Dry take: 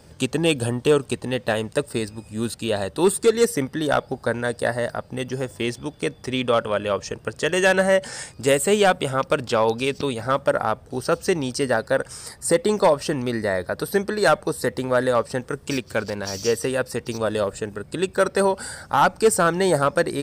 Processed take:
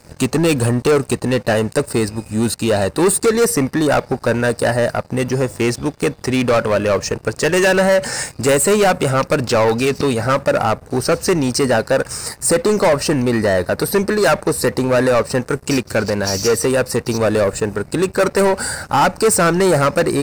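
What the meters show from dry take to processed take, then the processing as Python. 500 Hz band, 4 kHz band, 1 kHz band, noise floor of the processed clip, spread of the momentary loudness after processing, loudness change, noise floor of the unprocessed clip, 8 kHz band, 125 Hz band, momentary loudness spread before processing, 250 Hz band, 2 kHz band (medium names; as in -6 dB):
+5.5 dB, +4.5 dB, +4.5 dB, -43 dBFS, 6 LU, +6.0 dB, -48 dBFS, +8.5 dB, +8.5 dB, 10 LU, +7.5 dB, +5.0 dB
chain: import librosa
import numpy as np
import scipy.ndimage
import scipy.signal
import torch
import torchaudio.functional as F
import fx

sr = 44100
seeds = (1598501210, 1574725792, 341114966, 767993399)

y = fx.leveller(x, sr, passes=3)
y = fx.peak_eq(y, sr, hz=3300.0, db=-11.0, octaves=0.22)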